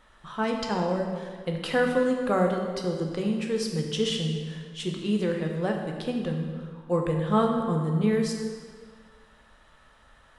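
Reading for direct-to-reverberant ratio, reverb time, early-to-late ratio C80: 1.5 dB, 1.8 s, 5.0 dB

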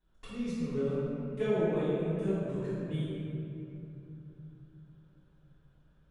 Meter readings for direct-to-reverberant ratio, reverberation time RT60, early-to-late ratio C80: -13.5 dB, 2.9 s, -2.5 dB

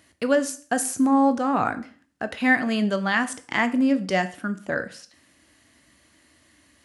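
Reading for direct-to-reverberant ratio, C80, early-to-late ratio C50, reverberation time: 10.0 dB, 20.5 dB, 16.0 dB, 0.45 s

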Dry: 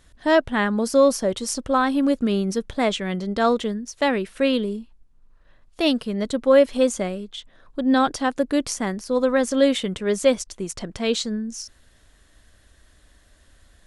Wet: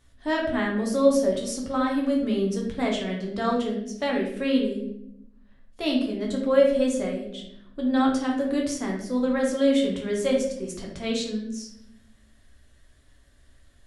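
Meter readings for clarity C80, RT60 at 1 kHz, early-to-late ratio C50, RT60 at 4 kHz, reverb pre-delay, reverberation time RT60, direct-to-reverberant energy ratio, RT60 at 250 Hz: 8.0 dB, 0.65 s, 4.5 dB, 0.55 s, 7 ms, 0.80 s, -1.5 dB, 1.3 s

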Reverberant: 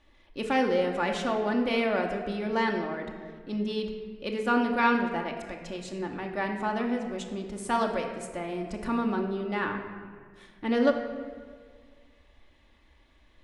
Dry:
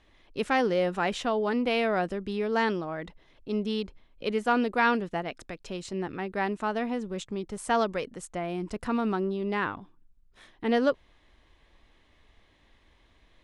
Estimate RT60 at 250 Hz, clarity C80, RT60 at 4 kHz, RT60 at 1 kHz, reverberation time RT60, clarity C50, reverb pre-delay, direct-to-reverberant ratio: 2.1 s, 7.5 dB, 1.1 s, 1.5 s, 1.7 s, 6.0 dB, 3 ms, 1.5 dB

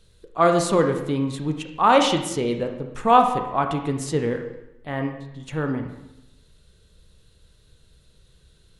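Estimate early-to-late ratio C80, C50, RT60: 9.0 dB, 7.0 dB, 0.90 s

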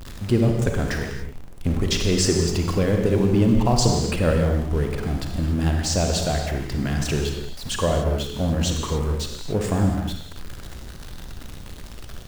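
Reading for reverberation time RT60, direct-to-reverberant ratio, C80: no single decay rate, 2.5 dB, 5.0 dB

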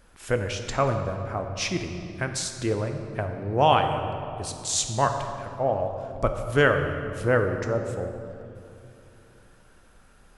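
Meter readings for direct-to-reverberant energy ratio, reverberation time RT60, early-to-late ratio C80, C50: 5.0 dB, 2.7 s, 7.5 dB, 6.5 dB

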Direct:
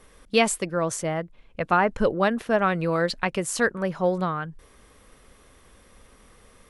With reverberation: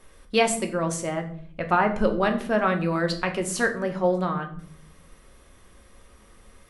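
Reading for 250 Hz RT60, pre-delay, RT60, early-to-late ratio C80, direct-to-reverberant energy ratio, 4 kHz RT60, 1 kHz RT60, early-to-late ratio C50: 1.0 s, 3 ms, 0.55 s, 15.0 dB, 4.0 dB, 0.40 s, 0.50 s, 11.5 dB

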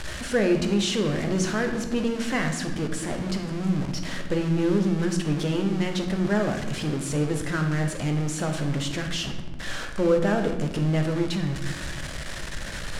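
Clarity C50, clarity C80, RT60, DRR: 6.5 dB, 9.0 dB, 1.1 s, 4.0 dB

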